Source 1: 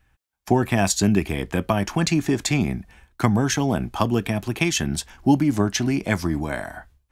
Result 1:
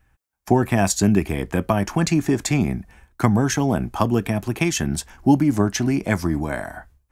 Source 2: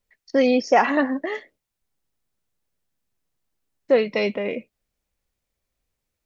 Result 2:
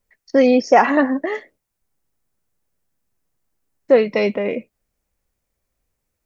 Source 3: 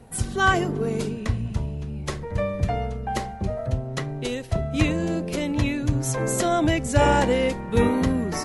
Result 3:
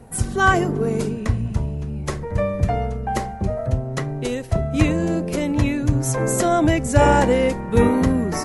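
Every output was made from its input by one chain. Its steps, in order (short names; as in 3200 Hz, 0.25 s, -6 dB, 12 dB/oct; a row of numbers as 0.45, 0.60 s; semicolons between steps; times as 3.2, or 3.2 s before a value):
bell 3500 Hz -6 dB 1.2 oct; normalise peaks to -1.5 dBFS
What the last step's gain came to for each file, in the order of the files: +2.0, +5.0, +4.0 dB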